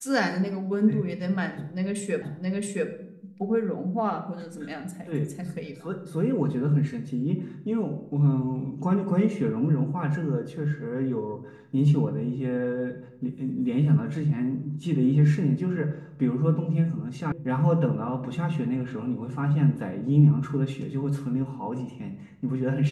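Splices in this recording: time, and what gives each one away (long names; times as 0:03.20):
0:02.22: the same again, the last 0.67 s
0:17.32: cut off before it has died away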